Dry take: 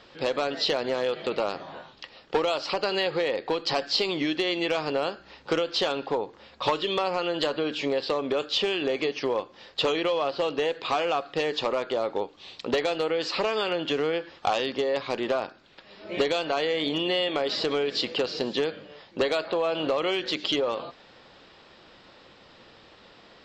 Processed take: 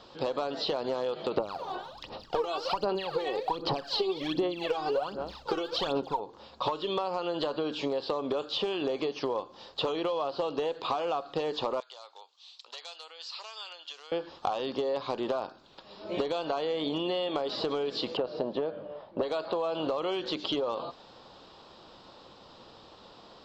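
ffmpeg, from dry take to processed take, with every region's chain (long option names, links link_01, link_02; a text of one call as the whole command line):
ffmpeg -i in.wav -filter_complex "[0:a]asettb=1/sr,asplit=3[link_01][link_02][link_03];[link_01]atrim=end=1.374[link_04];[link_02]atrim=start=1.37:end=6.2,asetpts=PTS-STARTPTS,afade=type=in:duration=0.004:curve=qsin,afade=type=out:start_time=4.826:duration=0.004:curve=qsin,aecho=1:1:210:0.119,atrim=end_sample=213003,aphaser=in_gain=1:out_gain=1:delay=2.7:decay=0.78:speed=1.3:type=sinusoidal[link_05];[link_03]atrim=start=6.196[link_06];[link_04][link_05]acrossfade=duration=0.004:curve1=hsin:curve2=qsin[link_07];[link_07][link_06]acrossfade=duration=0.004:curve1=qsin:curve2=hsin,asettb=1/sr,asplit=3[link_08][link_09][link_10];[link_08]atrim=end=11.804[link_11];[link_09]atrim=start=11.8:end=14.12,asetpts=PTS-STARTPTS,afade=type=in:duration=0.004:curve=qsin,afade=type=out:start_time=2.316:duration=0.004:curve=qsin,highpass=660,lowpass=6600,aderivative[link_12];[link_10]atrim=start=14.116[link_13];[link_11][link_12]acrossfade=duration=0.004:curve1=hsin:curve2=qsin[link_14];[link_14][link_13]acrossfade=duration=0.004:curve1=qsin:curve2=hsin,asettb=1/sr,asplit=3[link_15][link_16][link_17];[link_15]atrim=end=18.174[link_18];[link_16]atrim=start=18.17:end=19.23,asetpts=PTS-STARTPTS,afade=type=in:duration=0.004:curve=qsin,afade=type=out:start_time=1.056:duration=0.004:curve=qsin,lowpass=1900,equalizer=frequency=610:width=5.5:gain=11.5[link_19];[link_17]atrim=start=19.226[link_20];[link_18][link_19]acrossfade=duration=0.004:curve1=hsin:curve2=qsin[link_21];[link_21][link_20]acrossfade=duration=0.004:curve1=qsin:curve2=hsin,acrossover=split=3600[link_22][link_23];[link_23]acompressor=threshold=-44dB:ratio=4:attack=1:release=60[link_24];[link_22][link_24]amix=inputs=2:normalize=0,equalizer=frequency=1000:width_type=o:width=1:gain=6,equalizer=frequency=2000:width_type=o:width=1:gain=-12,equalizer=frequency=4000:width_type=o:width=1:gain=3,acompressor=threshold=-27dB:ratio=6" out.wav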